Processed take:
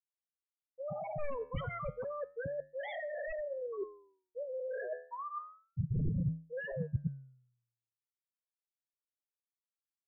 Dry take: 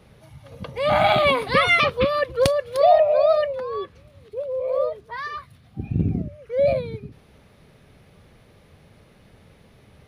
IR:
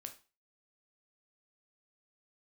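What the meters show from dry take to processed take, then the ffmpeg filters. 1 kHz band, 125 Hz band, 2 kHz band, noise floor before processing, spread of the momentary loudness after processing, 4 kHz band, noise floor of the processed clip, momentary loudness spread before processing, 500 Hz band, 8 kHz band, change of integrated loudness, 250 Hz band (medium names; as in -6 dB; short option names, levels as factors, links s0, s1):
-22.0 dB, -8.0 dB, -21.5 dB, -54 dBFS, 9 LU, under -30 dB, under -85 dBFS, 20 LU, -19.5 dB, no reading, -19.0 dB, -12.0 dB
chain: -af "lowpass=f=1600:w=0.5412,lowpass=f=1600:w=1.3066,dynaudnorm=f=720:g=3:m=5.31,afftfilt=real='re*gte(hypot(re,im),0.562)':imag='im*gte(hypot(re,im),0.562)':win_size=1024:overlap=0.75,aresample=8000,aeval=exprs='0.224*(abs(mod(val(0)/0.224+3,4)-2)-1)':c=same,aresample=44100,equalizer=f=160:t=o:w=0.59:g=10.5,volume=7.08,asoftclip=hard,volume=0.141,afftfilt=real='re*gte(hypot(re,im),0.316)':imag='im*gte(hypot(re,im),0.316)':win_size=1024:overlap=0.75,flanger=delay=9.2:depth=3.9:regen=-89:speed=0.31:shape=sinusoidal,areverse,acompressor=threshold=0.01:ratio=12,areverse,aemphasis=mode=reproduction:type=bsi,volume=1.12"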